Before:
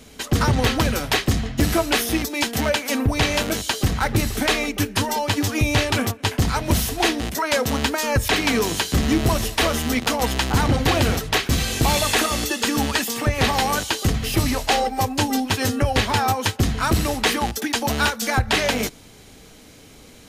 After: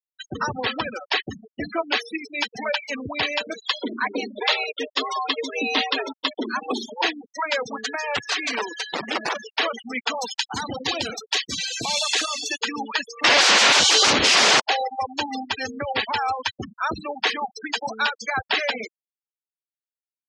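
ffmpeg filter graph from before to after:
ffmpeg -i in.wav -filter_complex "[0:a]asettb=1/sr,asplit=3[link_01][link_02][link_03];[link_01]atrim=end=3.654[link_04];[link_02]atrim=start=3.65:end=7.02,asetpts=PTS-STARTPTS,afade=type=in:duration=0.004:curve=qsin,afade=type=out:start_time=3.366:duration=0.004:curve=qsin,equalizer=frequency=3400:width=3.6:gain=4.5,afreqshift=170[link_05];[link_03]atrim=start=7.016[link_06];[link_04][link_05]acrossfade=duration=0.004:curve1=hsin:curve2=qsin[link_07];[link_07][link_06]acrossfade=duration=0.004:curve1=qsin:curve2=hsin,asettb=1/sr,asplit=3[link_08][link_09][link_10];[link_08]atrim=end=7.774[link_11];[link_09]atrim=start=7.77:end=9.44,asetpts=PTS-STARTPTS,afade=type=in:duration=0.004:curve=qsin,afade=type=out:start_time=1.666:duration=0.004:curve=qsin,bandreject=frequency=60:width_type=h:width=6,bandreject=frequency=120:width_type=h:width=6,bandreject=frequency=180:width_type=h:width=6,bandreject=frequency=240:width_type=h:width=6,bandreject=frequency=300:width_type=h:width=6,aeval=exprs='val(0)+0.0158*sin(2*PI*1700*n/s)':channel_layout=same,aeval=exprs='(mod(4.73*val(0)+1,2)-1)/4.73':channel_layout=same[link_12];[link_10]atrim=start=9.436[link_13];[link_11][link_12]acrossfade=duration=0.004:curve1=hsin:curve2=qsin[link_14];[link_14][link_13]acrossfade=duration=0.004:curve1=qsin:curve2=hsin,asettb=1/sr,asplit=3[link_15][link_16][link_17];[link_15]atrim=end=10.204[link_18];[link_16]atrim=start=10.2:end=12.58,asetpts=PTS-STARTPTS,afade=type=in:duration=0.004:curve=qsin,afade=type=out:start_time=2.376:duration=0.004:curve=qsin,acrossover=split=390|3000[link_19][link_20][link_21];[link_20]acompressor=threshold=-22dB:ratio=8:attack=3.2:release=140:knee=2.83:detection=peak[link_22];[link_19][link_22][link_21]amix=inputs=3:normalize=0,aemphasis=mode=production:type=cd,bandreject=frequency=50:width_type=h:width=6,bandreject=frequency=100:width_type=h:width=6,bandreject=frequency=150:width_type=h:width=6[link_23];[link_17]atrim=start=12.576[link_24];[link_18][link_23]acrossfade=duration=0.004:curve1=hsin:curve2=qsin[link_25];[link_25][link_24]acrossfade=duration=0.004:curve1=qsin:curve2=hsin,asettb=1/sr,asplit=3[link_26][link_27][link_28];[link_26]atrim=end=13.244[link_29];[link_27]atrim=start=13.24:end=14.6,asetpts=PTS-STARTPTS,afade=type=in:duration=0.004:curve=qsin,afade=type=out:start_time=1.356:duration=0.004:curve=qsin,lowpass=11000,aeval=exprs='0.335*sin(PI/2*7.08*val(0)/0.335)':channel_layout=same[link_30];[link_28]atrim=start=14.596[link_31];[link_29][link_30]acrossfade=duration=0.004:curve1=hsin:curve2=qsin[link_32];[link_32][link_31]acrossfade=duration=0.004:curve1=qsin:curve2=hsin,highpass=frequency=760:poles=1,afftfilt=real='re*gte(hypot(re,im),0.1)':imag='im*gte(hypot(re,im),0.1)':win_size=1024:overlap=0.75,lowpass=frequency=6200:width=0.5412,lowpass=frequency=6200:width=1.3066" out.wav

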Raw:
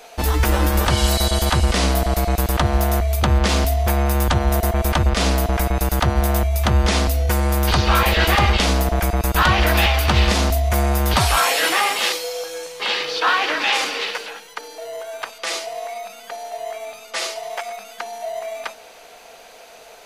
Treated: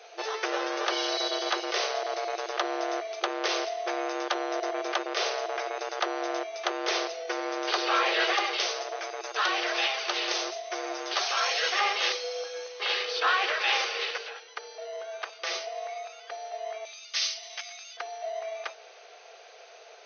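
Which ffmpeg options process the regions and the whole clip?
ffmpeg -i in.wav -filter_complex "[0:a]asettb=1/sr,asplit=3[link_01][link_02][link_03];[link_01]atrim=end=8.324[link_04];[link_02]atrim=start=8.32:end=11.79,asetpts=PTS-STARTPTS,afade=type=in:duration=0.004:curve=qsin,afade=type=out:start_time=3.466:duration=0.004:curve=qsin,highshelf=frequency=4600:gain=10,flanger=delay=1.8:depth=4.9:regen=64:speed=1.2:shape=triangular[link_05];[link_03]atrim=start=11.786[link_06];[link_04][link_05]acrossfade=duration=0.004:curve1=hsin:curve2=qsin[link_07];[link_07][link_06]acrossfade=duration=0.004:curve1=qsin:curve2=hsin,asettb=1/sr,asplit=3[link_08][link_09][link_10];[link_08]atrim=end=16.854[link_11];[link_09]atrim=start=16.85:end=17.97,asetpts=PTS-STARTPTS,afade=type=in:duration=0.004:curve=qsin,afade=type=out:start_time=1.116:duration=0.004:curve=qsin,bandpass=frequency=4000:width_type=q:width=0.87,aemphasis=mode=production:type=75kf[link_12];[link_10]atrim=start=17.966[link_13];[link_11][link_12]acrossfade=duration=0.004:curve1=hsin:curve2=qsin[link_14];[link_14][link_13]acrossfade=duration=0.004:curve1=qsin:curve2=hsin,afftfilt=real='re*between(b*sr/4096,340,6400)':imag='im*between(b*sr/4096,340,6400)':win_size=4096:overlap=0.75,bandreject=frequency=940:width=8.7,volume=-6.5dB" out.wav

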